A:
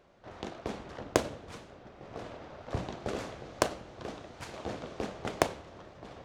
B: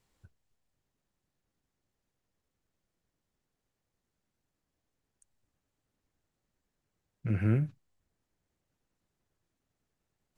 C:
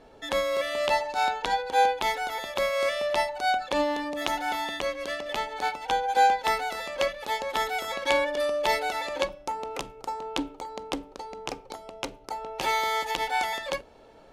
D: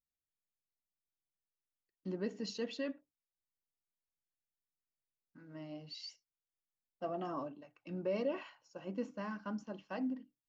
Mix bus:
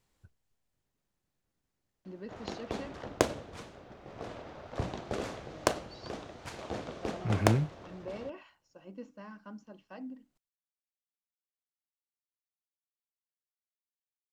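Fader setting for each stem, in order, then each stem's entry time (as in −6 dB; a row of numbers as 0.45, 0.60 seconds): 0.0 dB, −0.5 dB, muted, −6.0 dB; 2.05 s, 0.00 s, muted, 0.00 s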